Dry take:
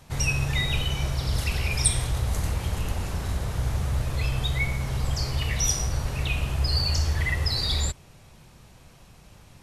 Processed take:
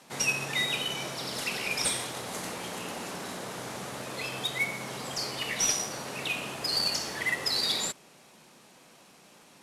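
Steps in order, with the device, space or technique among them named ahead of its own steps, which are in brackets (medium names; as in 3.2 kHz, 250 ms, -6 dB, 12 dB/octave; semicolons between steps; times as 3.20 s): early wireless headset (high-pass 210 Hz 24 dB/octave; CVSD coder 64 kbps)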